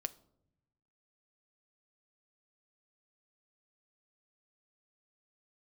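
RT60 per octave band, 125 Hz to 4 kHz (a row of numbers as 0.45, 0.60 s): 1.5, 1.2, 0.90, 0.65, 0.40, 0.40 s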